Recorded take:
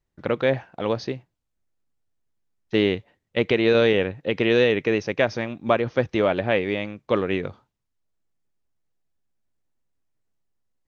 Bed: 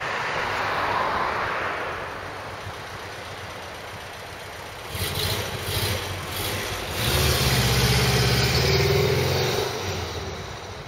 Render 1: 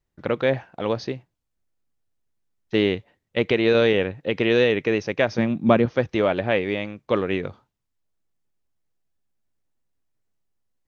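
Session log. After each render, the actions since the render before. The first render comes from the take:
0:05.38–0:05.86: parametric band 180 Hz +13.5 dB 1.5 octaves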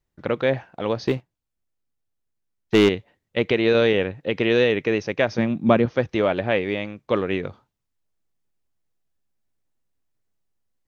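0:01.07–0:02.89: leveller curve on the samples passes 2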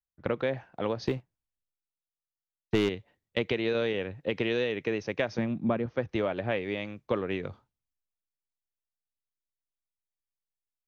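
downward compressor 6 to 1, threshold −26 dBFS, peak gain reduction 14.5 dB
multiband upward and downward expander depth 70%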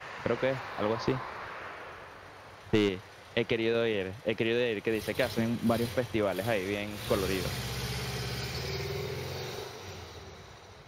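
mix in bed −15 dB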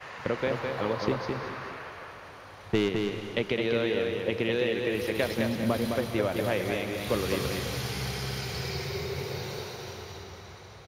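single-tap delay 211 ms −4.5 dB
reverb whose tail is shaped and stops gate 460 ms rising, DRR 9 dB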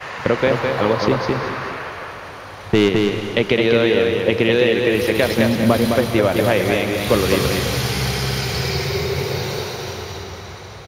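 level +12 dB
brickwall limiter −3 dBFS, peak gain reduction 3 dB

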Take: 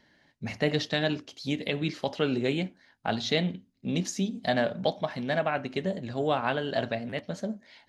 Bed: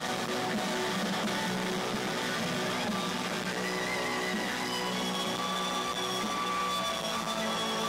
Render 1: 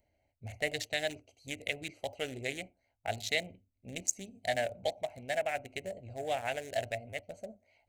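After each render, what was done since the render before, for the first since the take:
adaptive Wiener filter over 25 samples
drawn EQ curve 100 Hz 0 dB, 160 Hz −21 dB, 380 Hz −14 dB, 700 Hz −2 dB, 1,100 Hz −21 dB, 2,100 Hz +4 dB, 3,400 Hz −5 dB, 5,100 Hz −2 dB, 7,500 Hz +15 dB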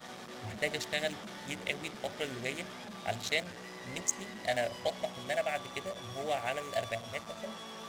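mix in bed −14 dB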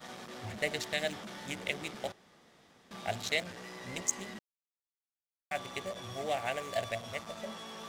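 0:02.12–0:02.91: fill with room tone
0:04.39–0:05.51: silence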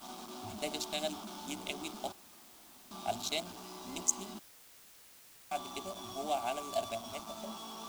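phaser with its sweep stopped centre 500 Hz, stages 6
in parallel at −10 dB: bit-depth reduction 8 bits, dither triangular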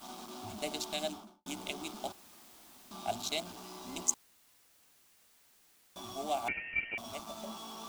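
0:01.03–0:01.46: fade out and dull
0:04.14–0:05.96: fill with room tone
0:06.48–0:06.98: voice inversion scrambler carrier 3,000 Hz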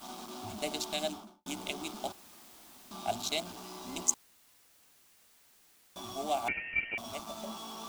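level +2 dB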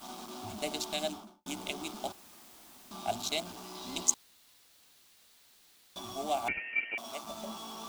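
0:03.75–0:05.99: parametric band 3,900 Hz +7 dB
0:06.58–0:07.24: high-pass filter 280 Hz

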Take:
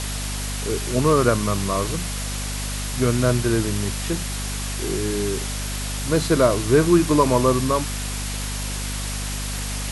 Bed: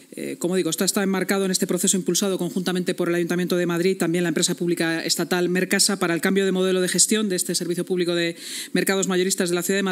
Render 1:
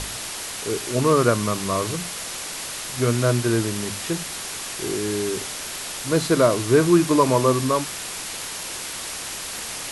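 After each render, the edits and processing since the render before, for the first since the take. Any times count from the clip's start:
mains-hum notches 50/100/150/200/250 Hz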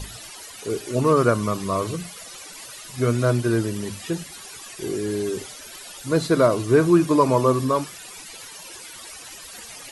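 broadband denoise 15 dB, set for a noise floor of −32 dBFS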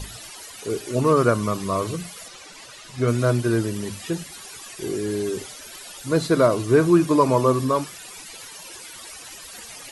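0:02.28–0:03.08: high-frequency loss of the air 57 metres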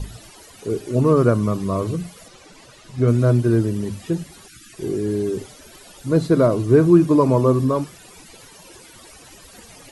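0:04.47–0:04.73: gain on a spectral selection 350–1,200 Hz −30 dB
tilt shelving filter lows +6.5 dB, about 630 Hz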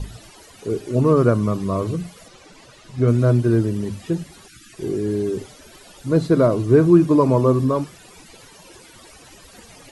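high-shelf EQ 9,900 Hz −6.5 dB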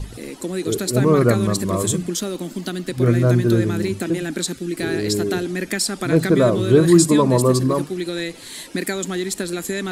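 mix in bed −3.5 dB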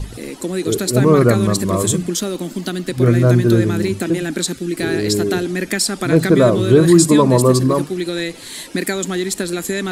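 level +3.5 dB
brickwall limiter −1 dBFS, peak gain reduction 2 dB

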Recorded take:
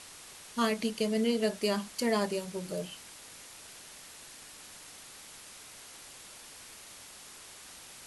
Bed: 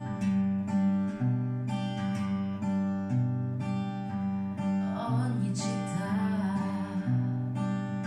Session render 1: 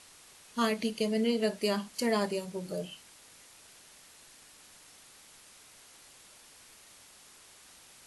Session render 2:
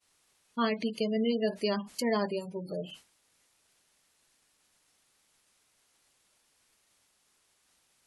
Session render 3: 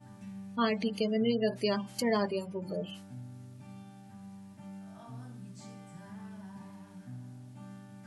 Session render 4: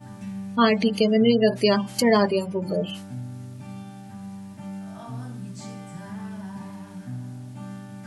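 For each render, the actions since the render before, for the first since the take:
noise reduction from a noise print 6 dB
gate on every frequency bin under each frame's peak −25 dB strong; downward expander −45 dBFS
mix in bed −17 dB
level +10.5 dB

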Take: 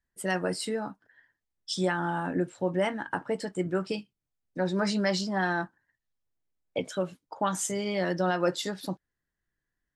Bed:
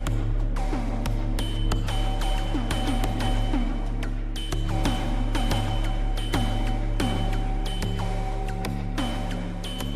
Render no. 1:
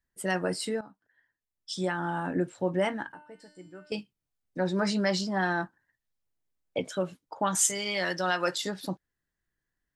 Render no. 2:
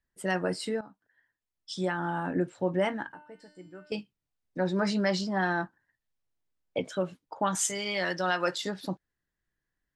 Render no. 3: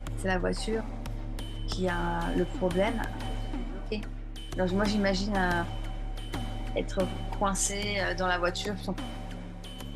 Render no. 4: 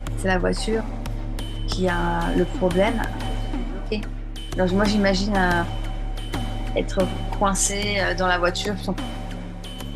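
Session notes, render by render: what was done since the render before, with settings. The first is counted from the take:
0:00.81–0:02.38: fade in, from −14.5 dB; 0:03.12–0:03.92: tuned comb filter 300 Hz, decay 0.76 s, mix 90%; 0:07.55–0:08.58: tilt shelving filter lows −8 dB, about 860 Hz
high-shelf EQ 7,900 Hz −10 dB
mix in bed −10 dB
level +7.5 dB

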